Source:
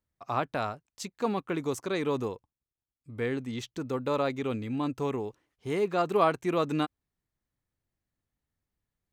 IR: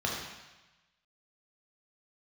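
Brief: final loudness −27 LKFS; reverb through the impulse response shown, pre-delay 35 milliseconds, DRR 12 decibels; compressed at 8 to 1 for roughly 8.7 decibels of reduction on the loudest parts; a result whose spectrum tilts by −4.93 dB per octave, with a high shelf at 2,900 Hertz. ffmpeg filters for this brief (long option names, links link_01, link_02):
-filter_complex "[0:a]highshelf=frequency=2900:gain=-9,acompressor=threshold=-28dB:ratio=8,asplit=2[link_01][link_02];[1:a]atrim=start_sample=2205,adelay=35[link_03];[link_02][link_03]afir=irnorm=-1:irlink=0,volume=-20.5dB[link_04];[link_01][link_04]amix=inputs=2:normalize=0,volume=7.5dB"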